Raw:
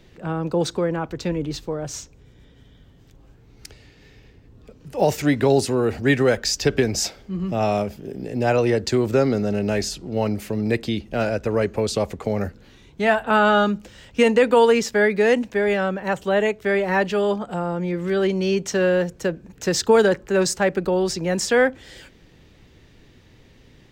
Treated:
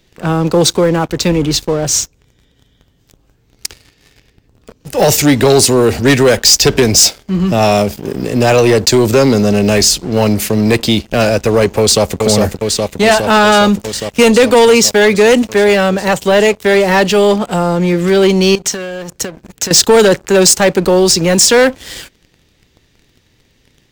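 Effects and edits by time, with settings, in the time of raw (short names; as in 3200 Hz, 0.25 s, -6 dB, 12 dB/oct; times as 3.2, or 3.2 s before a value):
11.79–12.2 echo throw 0.41 s, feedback 80%, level -5 dB
18.55–19.71 compressor 16:1, threshold -31 dBFS
whole clip: high shelf 3100 Hz +10.5 dB; sample leveller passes 3; dynamic EQ 1600 Hz, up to -4 dB, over -24 dBFS, Q 1.1; gain +1.5 dB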